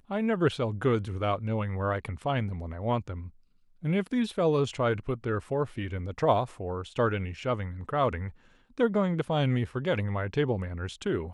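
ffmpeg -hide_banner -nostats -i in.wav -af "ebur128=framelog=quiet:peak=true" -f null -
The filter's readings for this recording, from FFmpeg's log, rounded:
Integrated loudness:
  I:         -29.4 LUFS
  Threshold: -39.7 LUFS
Loudness range:
  LRA:         2.2 LU
  Threshold: -49.9 LUFS
  LRA low:   -31.2 LUFS
  LRA high:  -29.0 LUFS
True peak:
  Peak:      -11.0 dBFS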